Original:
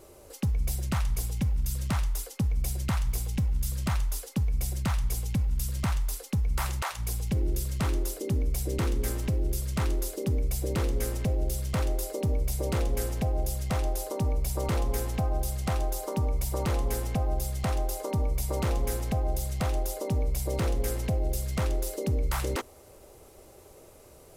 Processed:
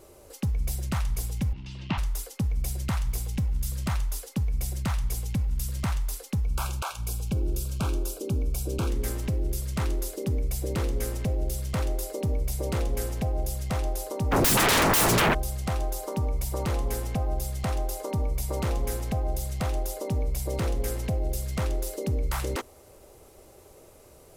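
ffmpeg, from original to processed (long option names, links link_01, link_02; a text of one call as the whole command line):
ffmpeg -i in.wav -filter_complex "[0:a]asettb=1/sr,asplit=3[link_01][link_02][link_03];[link_01]atrim=end=1.534[link_04];[link_02]atrim=start=1.53:end=1.98,asetpts=PTS-STARTPTS,afade=type=in:duration=0.004:curve=qsin,afade=type=out:start_time=0.446:duration=0.004:curve=qsin,highpass=120,equalizer=frequency=170:width_type=q:width=4:gain=4,equalizer=frequency=310:width_type=q:width=4:gain=7,equalizer=frequency=510:width_type=q:width=4:gain=-9,equalizer=frequency=920:width_type=q:width=4:gain=5,equalizer=frequency=1400:width_type=q:width=4:gain=-4,equalizer=frequency=2800:width_type=q:width=4:gain=10,lowpass=frequency=4400:width=0.5412,lowpass=frequency=4400:width=1.3066[link_05];[link_03]atrim=start=1.976[link_06];[link_04][link_05]acrossfade=duration=0.004:curve1=hsin:curve2=qsin[link_07];[link_07][link_06]acrossfade=duration=0.004:curve1=qsin:curve2=hsin,asettb=1/sr,asplit=3[link_08][link_09][link_10];[link_08]atrim=end=6.444[link_11];[link_09]atrim=start=6.44:end=8.9,asetpts=PTS-STARTPTS,afade=type=in:duration=0.004:curve=qsin,afade=type=out:start_time=2.456:duration=0.004:curve=qsin,asuperstop=centerf=1900:order=8:qfactor=3.3[link_12];[link_10]atrim=start=8.896[link_13];[link_11][link_12]acrossfade=duration=0.004:curve1=hsin:curve2=qsin[link_14];[link_14][link_13]acrossfade=duration=0.004:curve1=qsin:curve2=hsin,asplit=3[link_15][link_16][link_17];[link_15]afade=type=out:start_time=14.31:duration=0.02[link_18];[link_16]aeval=exprs='0.126*sin(PI/2*8.91*val(0)/0.126)':channel_layout=same,afade=type=in:start_time=14.31:duration=0.02,afade=type=out:start_time=15.33:duration=0.02[link_19];[link_17]afade=type=in:start_time=15.33:duration=0.02[link_20];[link_18][link_19][link_20]amix=inputs=3:normalize=0" out.wav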